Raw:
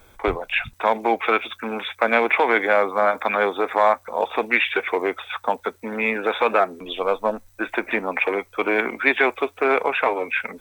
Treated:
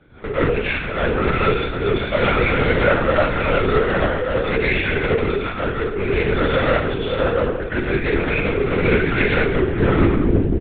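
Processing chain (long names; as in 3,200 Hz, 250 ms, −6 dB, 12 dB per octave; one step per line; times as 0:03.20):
turntable brake at the end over 1.32 s
parametric band 3,000 Hz −12 dB 2.1 octaves
mains-hum notches 60/120/180/240/300/360/420/480 Hz
in parallel at +2.5 dB: brickwall limiter −17.5 dBFS, peak gain reduction 9.5 dB
on the sum: asymmetric clip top −27 dBFS
Butterworth band-reject 840 Hz, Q 1.2
double-tracking delay 35 ms −12 dB
convolution reverb RT60 0.85 s, pre-delay 75 ms, DRR −11 dB
linear-prediction vocoder at 8 kHz whisper
level −4.5 dB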